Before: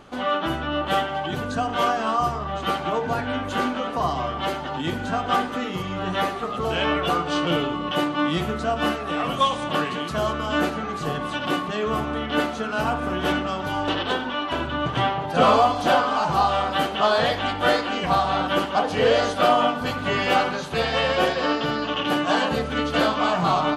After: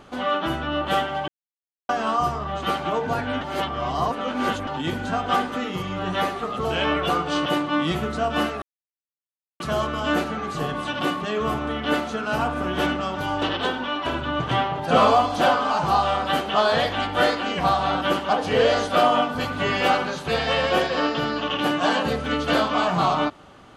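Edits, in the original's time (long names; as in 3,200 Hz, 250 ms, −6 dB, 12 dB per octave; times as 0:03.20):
0:01.28–0:01.89: silence
0:03.41–0:04.67: reverse
0:07.46–0:07.92: remove
0:09.08–0:10.06: silence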